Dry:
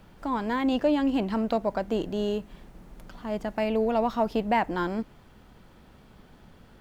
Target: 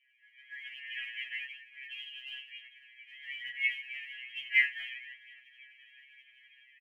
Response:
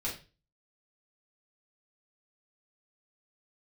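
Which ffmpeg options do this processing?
-filter_complex "[1:a]atrim=start_sample=2205,afade=type=out:start_time=0.15:duration=0.01,atrim=end_sample=7056[link_01];[0:a][link_01]afir=irnorm=-1:irlink=0,asplit=2[link_02][link_03];[link_03]acompressor=threshold=-30dB:ratio=6,volume=-1dB[link_04];[link_02][link_04]amix=inputs=2:normalize=0,flanger=delay=1.8:depth=7.6:regen=73:speed=0.44:shape=triangular,asettb=1/sr,asplit=3[link_05][link_06][link_07];[link_05]atrim=end=3.124[link_08];[link_06]atrim=start=3.12:end=4.63,asetpts=PTS-STARTPTS,afade=type=in:duration=0.004:curve=qsin,afade=type=out:start_time=1.506:duration=0.004:curve=qsin,aecho=1:1:6.8:0.52,atrim=end_sample=66591[link_09];[link_07]atrim=start=4.626[link_10];[link_08][link_09]acrossfade=duration=0.004:curve1=hsin:curve2=qsin[link_11];[link_11][link_10]acrossfade=duration=0.004:curve1=qsin:curve2=hsin,asplit=5[link_12][link_13][link_14][link_15][link_16];[link_13]adelay=248,afreqshift=-43,volume=-16.5dB[link_17];[link_14]adelay=496,afreqshift=-86,volume=-22.9dB[link_18];[link_15]adelay=744,afreqshift=-129,volume=-29.3dB[link_19];[link_16]adelay=992,afreqshift=-172,volume=-35.6dB[link_20];[link_12][link_17][link_18][link_19][link_20]amix=inputs=5:normalize=0,asplit=3[link_21][link_22][link_23];[link_21]afade=type=out:start_time=0.64:duration=0.02[link_24];[link_22]acrusher=bits=3:mix=0:aa=0.5,afade=type=in:start_time=0.64:duration=0.02,afade=type=out:start_time=1.45:duration=0.02[link_25];[link_23]afade=type=in:start_time=1.45:duration=0.02[link_26];[link_24][link_25][link_26]amix=inputs=3:normalize=0,afftfilt=real='re*between(b*sr/4096,1600,3300)':imag='im*between(b*sr/4096,1600,3300)':win_size=4096:overlap=0.75,dynaudnorm=framelen=280:gausssize=11:maxgain=15dB,aphaser=in_gain=1:out_gain=1:delay=1.7:decay=0.5:speed=1.1:type=triangular,afftfilt=real='re*2.45*eq(mod(b,6),0)':imag='im*2.45*eq(mod(b,6),0)':win_size=2048:overlap=0.75,volume=-7dB"

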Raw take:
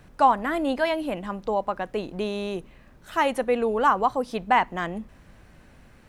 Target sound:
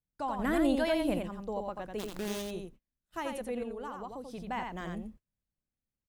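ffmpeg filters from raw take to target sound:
ffmpeg -i in.wav -filter_complex "[0:a]agate=range=-35dB:threshold=-39dB:ratio=16:detection=peak,equalizer=frequency=1300:width=0.35:gain=-9.5,asettb=1/sr,asplit=3[link_01][link_02][link_03];[link_01]atrim=end=3.624[link_04];[link_02]atrim=start=3.62:end=4.38,asetpts=PTS-STARTPTS,afade=type=in:duration=0.004:curve=qsin,afade=type=out:start_time=0.756:duration=0.004:curve=qsin,acompressor=threshold=-34dB:ratio=6[link_05];[link_03]atrim=start=4.376[link_06];[link_04][link_05]acrossfade=duration=0.004:curve1=hsin:curve2=qsin[link_07];[link_07][link_06]acrossfade=duration=0.004:curve1=qsin:curve2=hsin,alimiter=limit=-21.5dB:level=0:latency=1:release=132,asettb=1/sr,asplit=3[link_08][link_09][link_10];[link_08]atrim=end=0.394[link_11];[link_09]atrim=start=0.39:end=1.19,asetpts=PTS-STARTPTS,afade=type=in:duration=0.004:curve=qsin,afade=type=out:start_time=0.796:duration=0.004:curve=qsin,acontrast=84[link_12];[link_10]atrim=start=1.186[link_13];[link_11][link_12]acrossfade=duration=0.004:curve1=hsin:curve2=qsin[link_14];[link_14][link_13]acrossfade=duration=0.004:curve1=qsin:curve2=hsin,asplit=3[link_15][link_16][link_17];[link_15]afade=type=out:start_time=1.98:duration=0.02[link_18];[link_16]acrusher=bits=6:dc=4:mix=0:aa=0.000001,afade=type=in:start_time=1.98:duration=0.02,afade=type=out:start_time=2.41:duration=0.02[link_19];[link_17]afade=type=in:start_time=2.41:duration=0.02[link_20];[link_18][link_19][link_20]amix=inputs=3:normalize=0,aecho=1:1:87:0.596,volume=-5dB" out.wav

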